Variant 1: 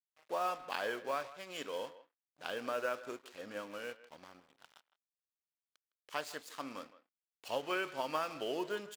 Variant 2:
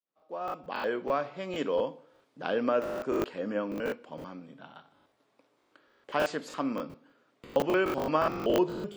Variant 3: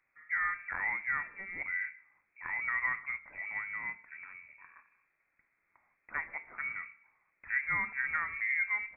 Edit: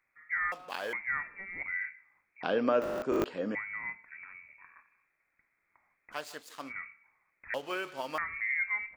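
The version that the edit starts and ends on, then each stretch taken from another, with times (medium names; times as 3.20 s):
3
0.52–0.93 s: from 1
2.43–3.55 s: from 2
6.14–6.70 s: from 1, crossfade 0.06 s
7.54–8.18 s: from 1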